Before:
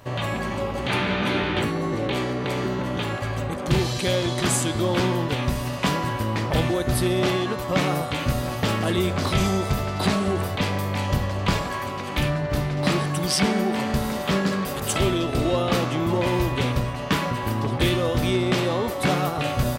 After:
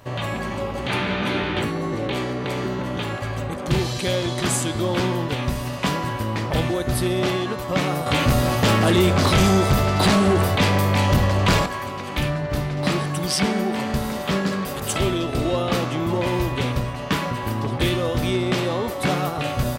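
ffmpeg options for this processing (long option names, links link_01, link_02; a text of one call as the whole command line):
ffmpeg -i in.wav -filter_complex "[0:a]asettb=1/sr,asplit=3[link_01][link_02][link_03];[link_01]atrim=end=8.064[link_04];[link_02]atrim=start=8.06:end=11.66,asetpts=PTS-STARTPTS,afade=type=in:duration=0.004:curve=qsin,afade=type=out:start_time=3.596:duration=0.004:curve=qsin,aeval=exprs='0.266*sin(PI/2*1.58*val(0)/0.266)':channel_layout=same[link_05];[link_03]atrim=start=11.656[link_06];[link_04][link_05]acrossfade=duration=0.004:curve1=hsin:curve2=qsin[link_07];[link_07][link_06]acrossfade=duration=0.004:curve1=qsin:curve2=hsin" out.wav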